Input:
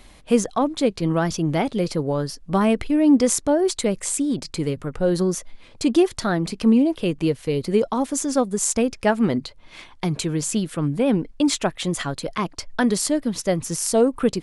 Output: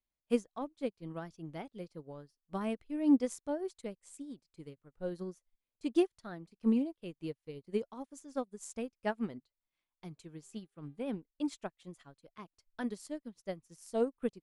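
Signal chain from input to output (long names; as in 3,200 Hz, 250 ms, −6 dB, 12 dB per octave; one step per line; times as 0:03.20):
0:10.38–0:11.19: hum with harmonics 400 Hz, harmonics 10, −51 dBFS −7 dB per octave
expander for the loud parts 2.5 to 1, over −37 dBFS
level −9 dB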